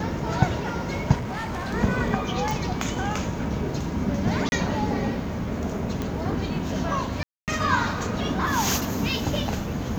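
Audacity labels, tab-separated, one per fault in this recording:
1.140000	1.740000	clipped -26.5 dBFS
2.510000	2.510000	pop
4.490000	4.520000	gap 31 ms
6.020000	6.020000	pop -15 dBFS
7.230000	7.480000	gap 0.248 s

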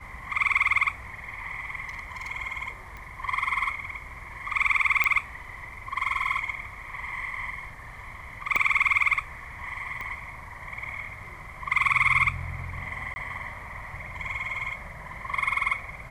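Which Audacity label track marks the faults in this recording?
1.870000	2.310000	clipped -30.5 dBFS
2.970000	2.970000	pop -27 dBFS
5.040000	5.040000	pop -10 dBFS
8.560000	8.560000	pop -12 dBFS
10.010000	10.010000	pop -23 dBFS
13.140000	13.160000	gap 20 ms

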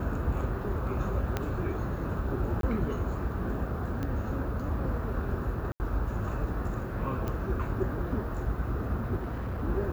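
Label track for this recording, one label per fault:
1.370000	1.370000	pop -15 dBFS
2.610000	2.630000	gap 22 ms
4.030000	4.030000	pop -22 dBFS
5.720000	5.800000	gap 79 ms
7.280000	7.280000	pop -21 dBFS
9.170000	9.630000	clipped -30 dBFS

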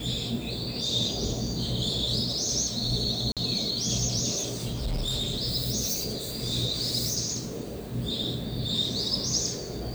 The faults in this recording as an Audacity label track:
3.320000	3.370000	gap 47 ms
4.360000	5.340000	clipped -25 dBFS

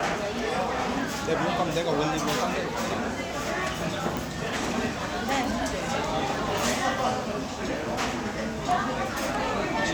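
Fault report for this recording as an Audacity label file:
4.170000	4.170000	pop

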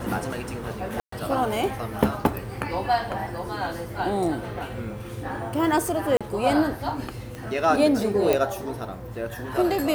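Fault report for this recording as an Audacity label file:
1.000000	1.120000	gap 0.124 s
6.170000	6.210000	gap 36 ms
7.350000	7.350000	pop -22 dBFS
8.330000	8.330000	pop

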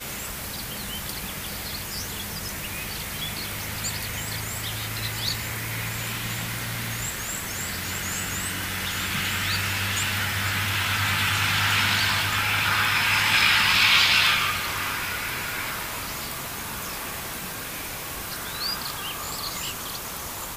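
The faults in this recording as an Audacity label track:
15.490000	15.490000	pop

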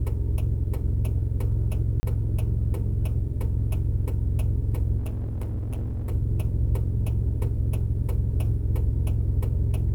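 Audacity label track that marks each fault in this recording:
2.000000	2.030000	gap 30 ms
4.980000	6.120000	clipped -26 dBFS

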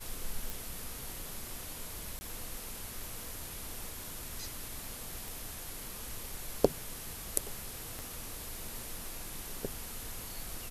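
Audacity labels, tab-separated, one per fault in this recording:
0.500000	0.500000	pop
2.190000	2.210000	gap 20 ms
5.280000	5.280000	pop
7.990000	7.990000	pop

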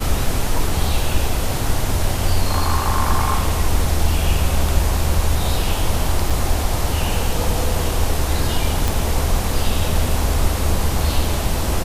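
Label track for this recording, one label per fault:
6.300000	6.300000	gap 5 ms
8.880000	8.880000	pop

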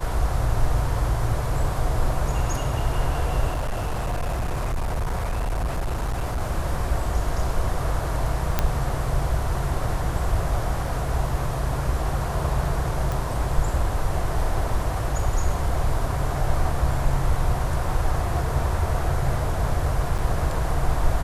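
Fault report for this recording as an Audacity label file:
3.510000	6.420000	clipped -21.5 dBFS
8.590000	8.590000	pop -6 dBFS
13.120000	13.120000	pop
20.180000	20.190000	gap 6.9 ms

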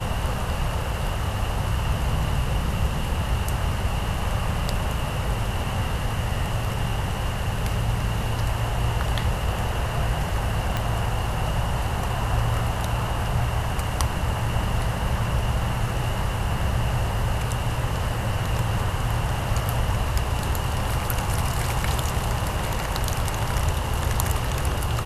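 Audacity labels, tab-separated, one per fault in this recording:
10.770000	10.770000	pop -11 dBFS

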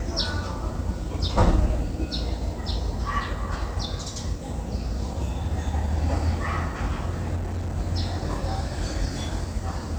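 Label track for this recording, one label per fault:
7.350000	7.770000	clipped -25.5 dBFS

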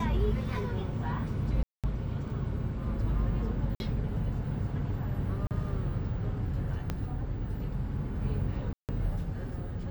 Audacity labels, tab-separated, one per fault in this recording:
1.630000	1.840000	gap 0.207 s
3.750000	3.800000	gap 51 ms
5.470000	5.510000	gap 38 ms
6.900000	6.900000	pop -18 dBFS
8.730000	8.890000	gap 0.158 s

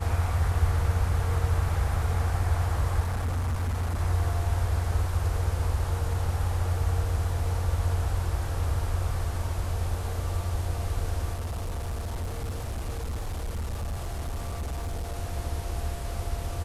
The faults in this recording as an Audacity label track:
3.000000	4.010000	clipped -24.5 dBFS
11.330000	15.170000	clipped -28 dBFS

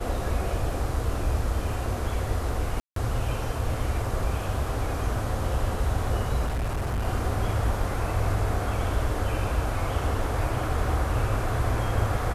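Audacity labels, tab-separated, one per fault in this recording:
2.800000	2.960000	gap 0.163 s
6.460000	7.060000	clipped -24 dBFS

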